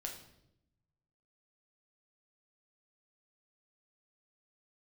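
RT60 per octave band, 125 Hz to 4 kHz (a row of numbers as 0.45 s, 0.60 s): 1.6 s, 1.2 s, 0.95 s, 0.70 s, 0.65 s, 0.65 s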